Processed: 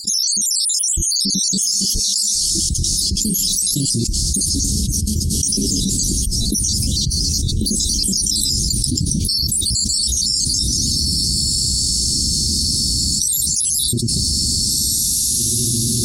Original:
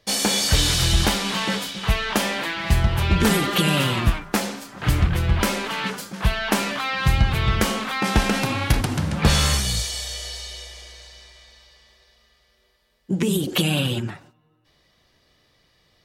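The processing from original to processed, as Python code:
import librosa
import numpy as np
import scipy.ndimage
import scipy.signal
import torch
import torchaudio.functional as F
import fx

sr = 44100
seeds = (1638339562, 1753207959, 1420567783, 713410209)

p1 = fx.spec_dropout(x, sr, seeds[0], share_pct=76)
p2 = scipy.signal.sosfilt(scipy.signal.ellip(3, 1.0, 60, [310.0, 5300.0], 'bandstop', fs=sr, output='sos'), p1)
p3 = fx.band_shelf(p2, sr, hz=6300.0, db=13.5, octaves=1.7)
p4 = p3 + fx.echo_diffused(p3, sr, ms=1864, feedback_pct=45, wet_db=-14, dry=0)
p5 = fx.env_flatten(p4, sr, amount_pct=100)
y = p5 * librosa.db_to_amplitude(-5.0)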